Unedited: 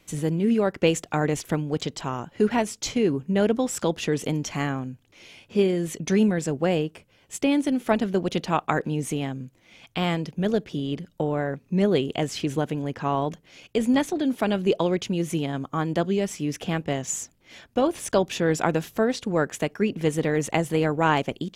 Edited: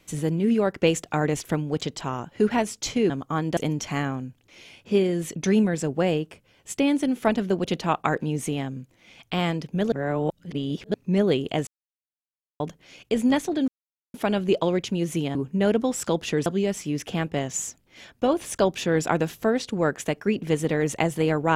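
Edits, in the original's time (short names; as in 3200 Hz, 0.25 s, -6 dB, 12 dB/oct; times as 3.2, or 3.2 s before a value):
3.1–4.21 swap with 15.53–16
10.56–11.58 reverse
12.31–13.24 mute
14.32 insert silence 0.46 s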